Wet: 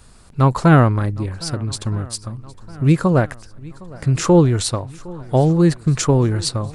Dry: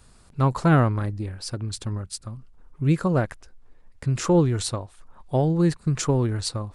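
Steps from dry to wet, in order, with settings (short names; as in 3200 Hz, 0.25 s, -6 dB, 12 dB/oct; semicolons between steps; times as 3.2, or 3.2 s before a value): swung echo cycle 1.268 s, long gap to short 1.5:1, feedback 50%, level -22 dB; gain +6.5 dB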